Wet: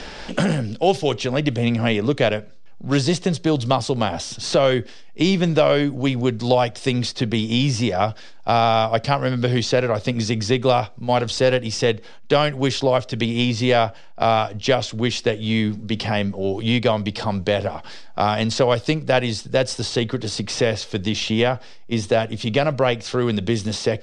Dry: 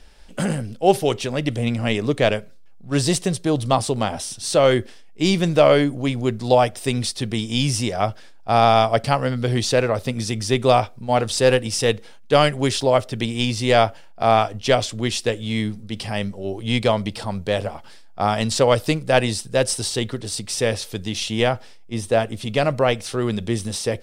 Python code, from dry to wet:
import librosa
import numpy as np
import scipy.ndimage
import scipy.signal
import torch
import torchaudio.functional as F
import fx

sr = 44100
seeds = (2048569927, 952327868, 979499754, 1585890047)

y = scipy.signal.sosfilt(scipy.signal.butter(4, 6600.0, 'lowpass', fs=sr, output='sos'), x)
y = fx.band_squash(y, sr, depth_pct=70)